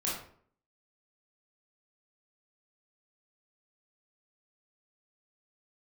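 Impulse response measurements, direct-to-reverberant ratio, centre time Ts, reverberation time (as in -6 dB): -6.0 dB, 48 ms, 0.55 s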